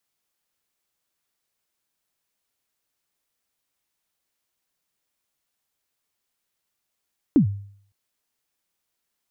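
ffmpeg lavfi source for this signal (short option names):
-f lavfi -i "aevalsrc='0.335*pow(10,-3*t/0.58)*sin(2*PI*(330*0.102/log(100/330)*(exp(log(100/330)*min(t,0.102)/0.102)-1)+100*max(t-0.102,0)))':d=0.56:s=44100"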